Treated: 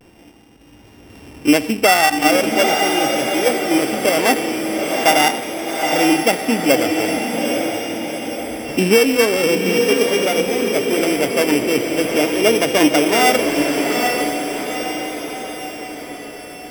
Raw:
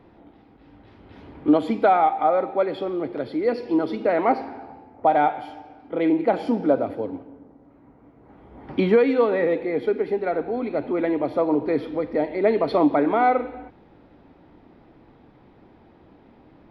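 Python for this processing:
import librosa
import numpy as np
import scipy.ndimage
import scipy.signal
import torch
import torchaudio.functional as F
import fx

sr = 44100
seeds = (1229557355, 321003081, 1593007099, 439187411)

y = np.r_[np.sort(x[:len(x) // 16 * 16].reshape(-1, 16), axis=1).ravel(), x[len(x) // 16 * 16:]]
y = fx.echo_diffused(y, sr, ms=826, feedback_pct=55, wet_db=-3.5)
y = fx.vibrato(y, sr, rate_hz=0.41, depth_cents=33.0)
y = y * 10.0 ** (4.0 / 20.0)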